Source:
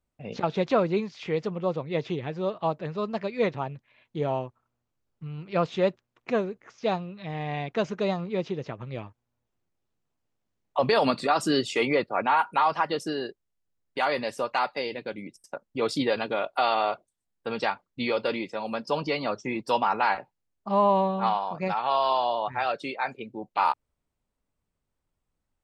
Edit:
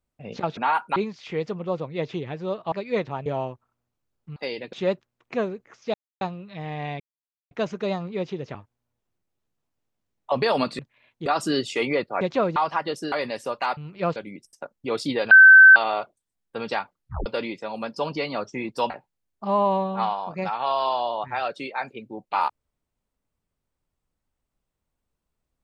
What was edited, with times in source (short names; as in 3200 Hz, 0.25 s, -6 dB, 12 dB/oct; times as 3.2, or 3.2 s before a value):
0.57–0.92 swap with 12.21–12.6
2.68–3.19 cut
3.73–4.2 move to 11.26
5.3–5.69 swap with 14.7–15.07
6.9 insert silence 0.27 s
7.69 insert silence 0.51 s
8.73–9.02 cut
13.16–14.05 cut
16.22–16.67 bleep 1540 Hz -6 dBFS
17.87 tape stop 0.30 s
19.81–20.14 cut